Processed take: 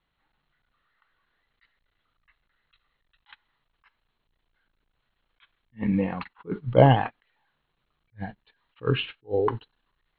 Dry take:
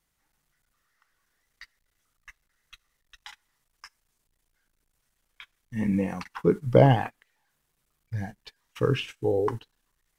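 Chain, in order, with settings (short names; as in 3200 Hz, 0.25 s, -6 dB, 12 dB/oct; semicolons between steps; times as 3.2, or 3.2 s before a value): rippled Chebyshev low-pass 4200 Hz, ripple 3 dB; attack slew limiter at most 350 dB/s; gain +4 dB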